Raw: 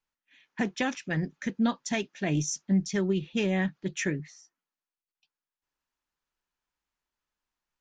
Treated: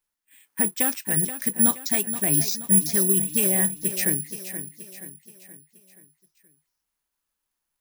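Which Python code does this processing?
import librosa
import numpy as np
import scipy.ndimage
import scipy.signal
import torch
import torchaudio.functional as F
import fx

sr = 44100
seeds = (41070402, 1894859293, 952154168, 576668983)

p1 = x + fx.echo_feedback(x, sr, ms=476, feedback_pct=47, wet_db=-11.0, dry=0)
y = (np.kron(p1[::4], np.eye(4)[0]) * 4)[:len(p1)]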